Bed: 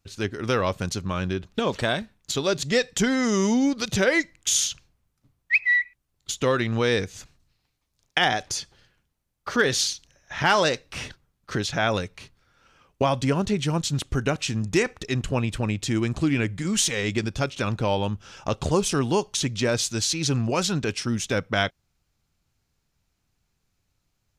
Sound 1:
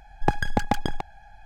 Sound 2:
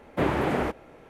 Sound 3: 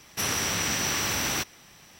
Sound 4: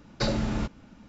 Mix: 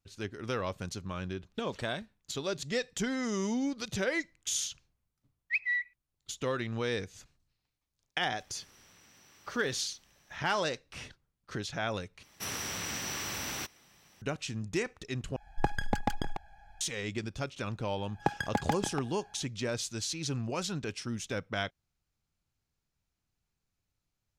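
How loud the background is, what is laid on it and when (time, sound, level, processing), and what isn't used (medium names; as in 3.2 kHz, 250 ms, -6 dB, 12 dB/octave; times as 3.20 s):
bed -10.5 dB
8.38 s: add 3 -14.5 dB + compression 16:1, threshold -42 dBFS
12.23 s: replace with 3 -9.5 dB
15.36 s: replace with 1 -7 dB
17.98 s: add 1 -6 dB + high-pass 120 Hz
not used: 2, 4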